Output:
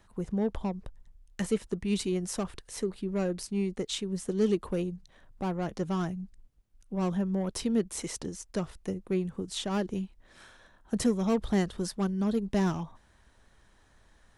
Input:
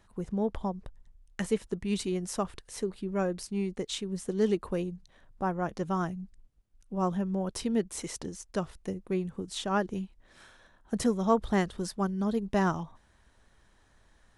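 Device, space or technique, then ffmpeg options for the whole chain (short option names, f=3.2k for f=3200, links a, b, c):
one-band saturation: -filter_complex "[0:a]acrossover=split=480|2500[a][b][c];[b]asoftclip=type=tanh:threshold=-37dB[d];[a][d][c]amix=inputs=3:normalize=0,volume=1.5dB"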